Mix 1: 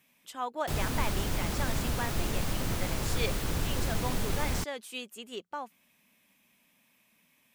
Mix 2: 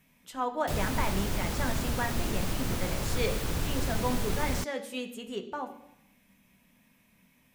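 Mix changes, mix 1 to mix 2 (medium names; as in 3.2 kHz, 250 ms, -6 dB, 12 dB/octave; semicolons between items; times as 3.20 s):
speech: remove high-pass 380 Hz 6 dB/octave; reverb: on, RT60 0.85 s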